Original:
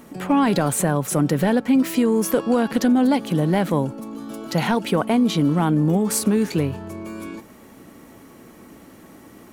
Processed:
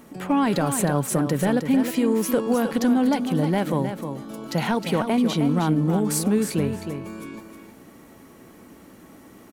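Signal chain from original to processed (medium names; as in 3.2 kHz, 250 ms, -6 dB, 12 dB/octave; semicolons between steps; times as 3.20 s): feedback delay 312 ms, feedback 15%, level -8 dB; trim -3 dB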